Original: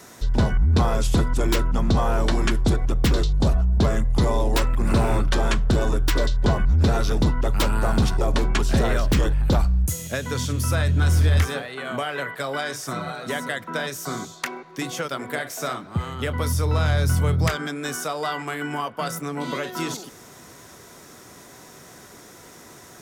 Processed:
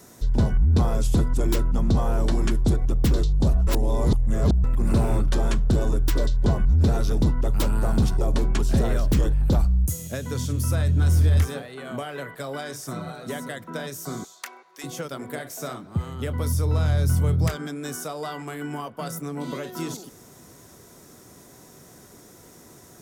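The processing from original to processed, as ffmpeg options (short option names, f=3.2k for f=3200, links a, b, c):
-filter_complex "[0:a]asettb=1/sr,asplit=3[a][b][c];[a]atrim=end=14.244[d];[b]atrim=start=14.24:end=14.84,asetpts=PTS-STARTPTS,afade=t=in:d=0.004:c=qsin,afade=t=out:st=0.596:d=0.004:c=qsin,highpass=800[e];[c]atrim=start=14.836[f];[d][e]acrossfade=d=0.004:c1=hsin:c2=qsin[g];[g][f]acrossfade=d=0.004:c1=qsin:c2=hsin,asplit=3[h][i][j];[h]atrim=end=3.672[k];[i]atrim=start=3.668:end=4.642,asetpts=PTS-STARTPTS,areverse[l];[j]atrim=start=4.638[m];[k][l]acrossfade=d=0.004:c1=hsin:c2=hsin[n];[n][m]acrossfade=d=0.004:c1=hsin:c2=hsin,equalizer=f=2k:w=0.34:g=-9"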